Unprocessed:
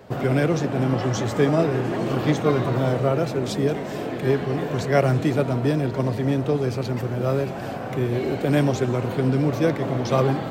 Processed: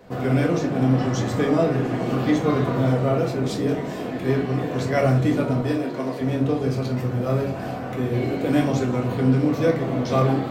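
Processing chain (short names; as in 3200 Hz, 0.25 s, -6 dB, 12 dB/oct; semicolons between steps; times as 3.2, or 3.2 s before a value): 5.6–6.21 HPF 310 Hz 12 dB/oct; reverb RT60 0.35 s, pre-delay 4 ms, DRR -1 dB; gain -4 dB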